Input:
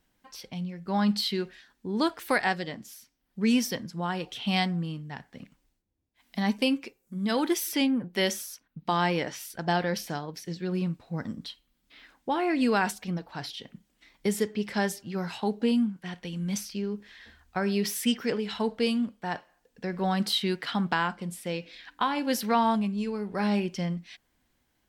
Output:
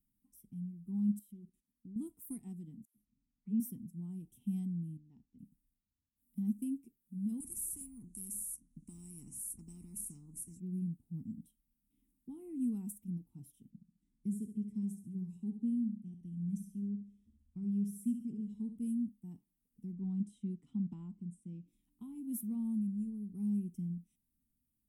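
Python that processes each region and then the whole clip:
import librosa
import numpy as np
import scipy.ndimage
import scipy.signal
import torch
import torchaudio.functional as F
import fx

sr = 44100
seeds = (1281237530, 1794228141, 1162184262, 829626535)

y = fx.chain(x, sr, fx.level_steps(step_db=13),
    fx.highpass(hz=47.0, slope=12),
    fx.doppler_dist(depth_ms=0.31), at=(1.19, 1.96))
y = fx.chain(y, sr, fx.air_absorb(metres=420.0),
    fx.dispersion(late='lows', ms=100.0, hz=900.0),
    fx.sustainer(db_per_s=37.0), at=(2.85, 3.6))
y = fx.chain(y, sr, fx.cheby2_lowpass(hz=10000.0, order=4, stop_db=40),
    fx.peak_eq(hz=150.0, db=-13.0, octaves=0.93), at=(4.97, 5.39))
y = fx.chain(y, sr, fx.fixed_phaser(hz=1400.0, stages=4),
    fx.resample_bad(factor=2, down='none', up='filtered'),
    fx.spectral_comp(ratio=4.0), at=(7.4, 10.6))
y = fx.chain(y, sr, fx.lowpass(hz=6000.0, slope=12),
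    fx.room_flutter(wall_m=11.9, rt60_s=0.48),
    fx.notch_cascade(direction='rising', hz=1.8), at=(13.7, 18.78))
y = fx.chain(y, sr, fx.bessel_lowpass(hz=4900.0, order=8),
    fx.dynamic_eq(hz=1000.0, q=2.3, threshold_db=-39.0, ratio=4.0, max_db=4), at=(19.92, 21.68))
y = scipy.signal.sosfilt(scipy.signal.ellip(3, 1.0, 40, [230.0, 9600.0], 'bandstop', fs=sr, output='sos'), y)
y = fx.bass_treble(y, sr, bass_db=-7, treble_db=-3)
y = y * 10.0 ** (-2.0 / 20.0)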